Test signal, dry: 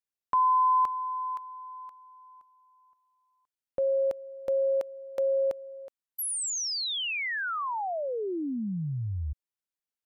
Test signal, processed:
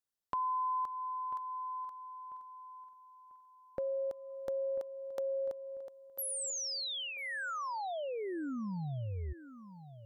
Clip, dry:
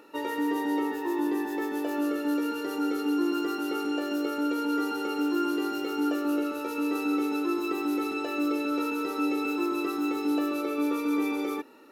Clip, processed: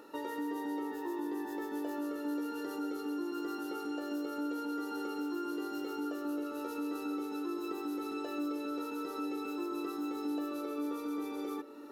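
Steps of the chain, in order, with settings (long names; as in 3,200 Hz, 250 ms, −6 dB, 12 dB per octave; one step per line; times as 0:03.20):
parametric band 2,400 Hz −9 dB 0.45 octaves
downward compressor 2 to 1, threshold −42 dBFS
on a send: feedback echo with a low-pass in the loop 993 ms, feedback 36%, low-pass 2,900 Hz, level −14 dB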